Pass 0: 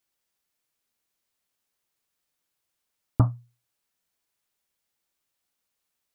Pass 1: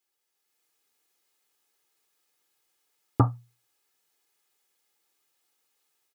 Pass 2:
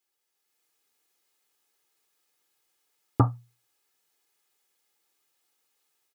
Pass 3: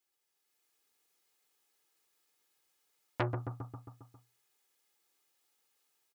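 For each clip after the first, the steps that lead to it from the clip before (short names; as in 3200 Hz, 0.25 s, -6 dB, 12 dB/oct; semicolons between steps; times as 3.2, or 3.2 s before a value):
HPF 170 Hz 12 dB/oct; comb 2.4 ms, depth 56%; AGC gain up to 7 dB; gain -2 dB
nothing audible
on a send: feedback echo 0.135 s, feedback 59%, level -10.5 dB; on the sum: core saturation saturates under 1700 Hz; gain -2.5 dB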